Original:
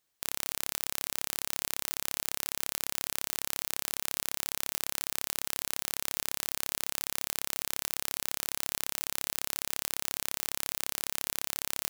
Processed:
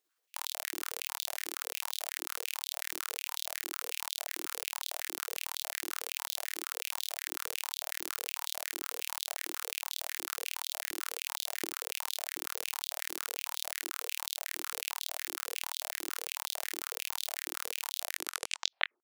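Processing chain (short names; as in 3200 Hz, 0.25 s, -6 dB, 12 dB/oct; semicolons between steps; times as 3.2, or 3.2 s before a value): tape stop at the end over 0.71 s; granular stretch 1.6×, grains 0.12 s; stepped high-pass 11 Hz 340–3600 Hz; gain -3.5 dB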